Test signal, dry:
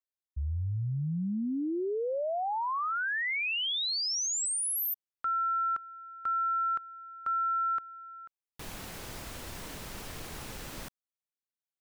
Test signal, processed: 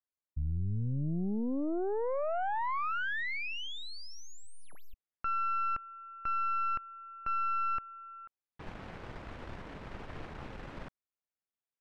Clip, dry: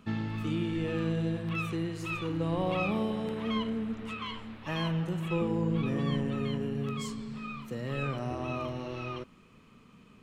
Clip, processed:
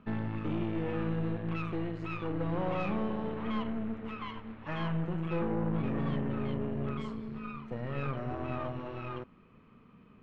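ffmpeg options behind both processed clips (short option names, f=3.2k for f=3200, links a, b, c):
-af "aeval=exprs='0.126*(cos(1*acos(clip(val(0)/0.126,-1,1)))-cos(1*PI/2))+0.0126*(cos(5*acos(clip(val(0)/0.126,-1,1)))-cos(5*PI/2))+0.0178*(cos(8*acos(clip(val(0)/0.126,-1,1)))-cos(8*PI/2))':c=same,lowpass=2k,volume=-4.5dB"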